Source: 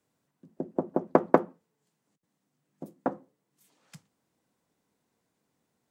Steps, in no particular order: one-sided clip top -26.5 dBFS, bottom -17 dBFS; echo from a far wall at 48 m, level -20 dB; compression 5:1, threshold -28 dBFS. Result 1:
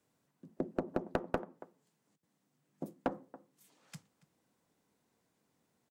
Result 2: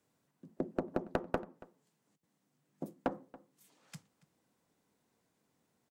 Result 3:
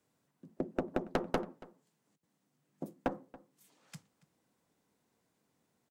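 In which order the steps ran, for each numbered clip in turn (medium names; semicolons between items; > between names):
compression > echo from a far wall > one-sided clip; compression > one-sided clip > echo from a far wall; one-sided clip > compression > echo from a far wall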